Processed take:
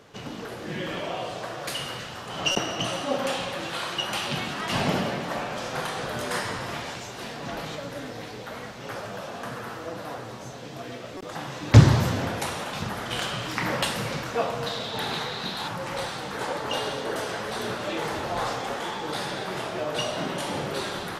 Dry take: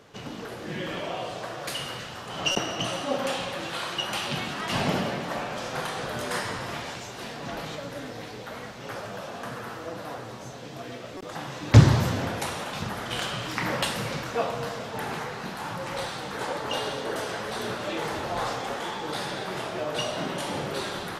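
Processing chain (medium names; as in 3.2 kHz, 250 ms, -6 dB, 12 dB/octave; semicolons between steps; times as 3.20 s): 14.66–15.68 s: peaking EQ 3.8 kHz +15 dB 0.5 oct; trim +1 dB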